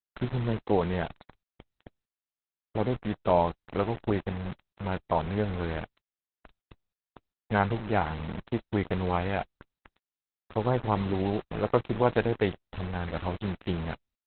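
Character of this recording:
a quantiser's noise floor 6 bits, dither none
Opus

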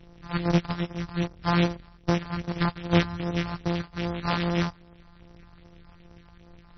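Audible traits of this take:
a buzz of ramps at a fixed pitch in blocks of 256 samples
phaser sweep stages 4, 2.5 Hz, lowest notch 400–2,400 Hz
aliases and images of a low sample rate 5,800 Hz, jitter 20%
MP3

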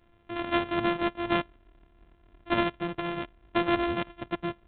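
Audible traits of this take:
a buzz of ramps at a fixed pitch in blocks of 128 samples
G.726

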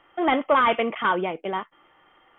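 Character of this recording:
background noise floor −60 dBFS
spectral slope −2.0 dB per octave

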